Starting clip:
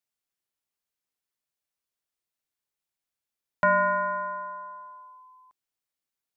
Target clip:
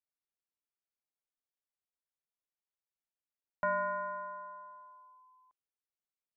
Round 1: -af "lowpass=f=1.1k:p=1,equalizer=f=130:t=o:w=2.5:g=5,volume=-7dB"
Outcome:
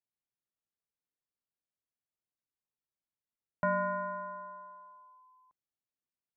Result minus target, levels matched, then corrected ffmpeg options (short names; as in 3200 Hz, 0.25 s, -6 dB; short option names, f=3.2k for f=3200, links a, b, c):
125 Hz band +9.0 dB
-af "lowpass=f=1.1k:p=1,equalizer=f=130:t=o:w=2.5:g=-7,volume=-7dB"